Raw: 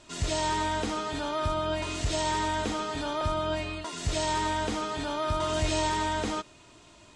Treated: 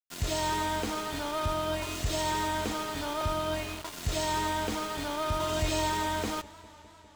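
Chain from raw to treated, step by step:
centre clipping without the shift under −34.5 dBFS
feedback echo with a swinging delay time 202 ms, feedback 78%, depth 130 cents, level −22 dB
level −1.5 dB

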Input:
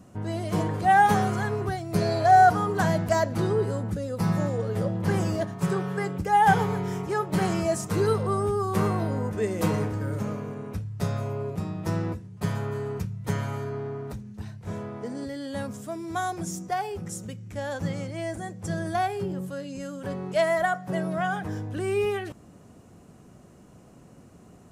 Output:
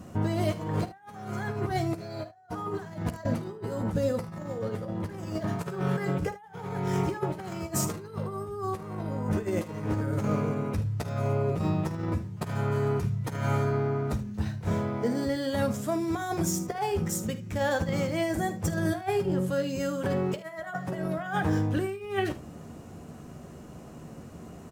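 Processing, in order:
compressor whose output falls as the input rises −31 dBFS, ratio −0.5
on a send: ambience of single reflections 13 ms −9 dB, 51 ms −15 dB, 76 ms −15.5 dB
on the sum: linearly interpolated sample-rate reduction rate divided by 2×
level +1.5 dB

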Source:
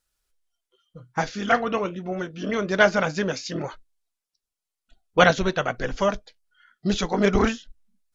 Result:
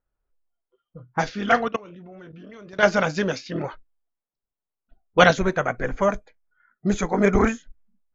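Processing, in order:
low-pass that shuts in the quiet parts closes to 1,000 Hz, open at −18.5 dBFS
0:01.68–0:02.83: output level in coarse steps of 22 dB
0:05.37–0:07.80: gain on a spectral selection 2,500–6,100 Hz −12 dB
level +1.5 dB

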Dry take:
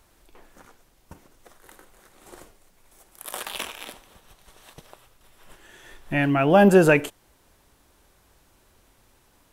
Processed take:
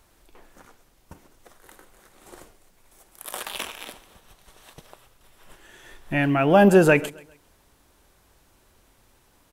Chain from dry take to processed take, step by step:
repeating echo 133 ms, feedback 38%, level −22 dB

